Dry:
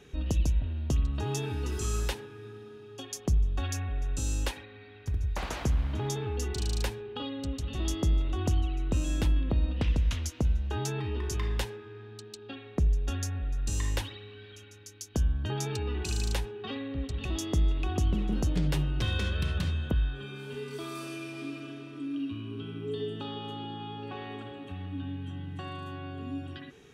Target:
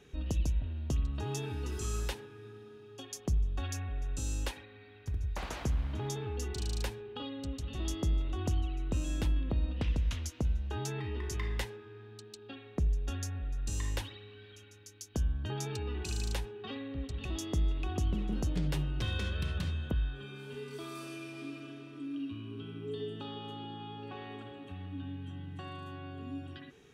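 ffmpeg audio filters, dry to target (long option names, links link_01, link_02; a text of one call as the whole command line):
ffmpeg -i in.wav -filter_complex "[0:a]asettb=1/sr,asplit=3[link_01][link_02][link_03];[link_01]atrim=end=10.904[link_04];[link_02]atrim=start=10.9:end=11.67,asetpts=PTS-STARTPTS,afade=type=in:duration=0.004:curve=qsin,afade=type=out:start_time=0.766:duration=0.004:curve=qsin,equalizer=frequency=2000:width=7.7:gain=9.5[link_05];[link_03]atrim=start=11.666[link_06];[link_04][link_05]acrossfade=duration=0.004:curve1=hsin:curve2=qsin[link_07];[link_07][link_06]acrossfade=duration=0.004:curve1=qsin:curve2=hsin,volume=-4.5dB" out.wav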